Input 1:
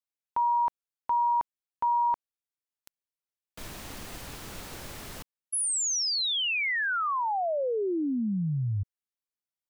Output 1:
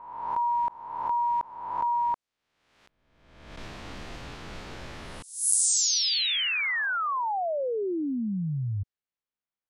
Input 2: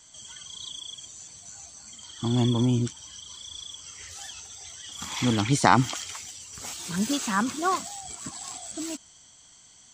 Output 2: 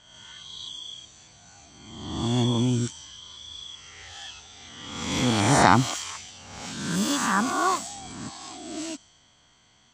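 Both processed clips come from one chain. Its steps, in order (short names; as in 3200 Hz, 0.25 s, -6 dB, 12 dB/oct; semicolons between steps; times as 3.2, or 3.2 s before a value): spectral swells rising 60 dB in 1.09 s; low-pass opened by the level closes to 2800 Hz, open at -21.5 dBFS; gain -1 dB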